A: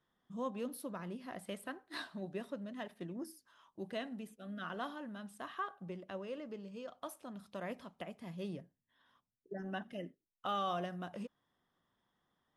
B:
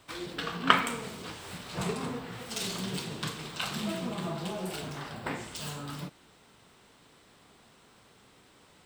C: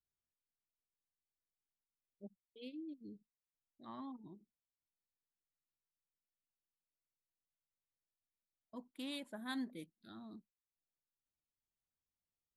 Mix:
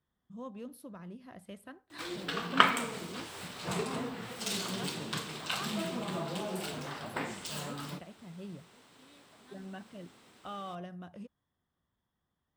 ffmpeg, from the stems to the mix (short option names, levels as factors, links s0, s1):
-filter_complex "[0:a]equalizer=f=62:w=0.52:g=14.5,volume=0.473[s0];[1:a]highpass=f=150:p=1,adelay=1900,volume=0.944[s1];[2:a]volume=0.133[s2];[s0][s1][s2]amix=inputs=3:normalize=0"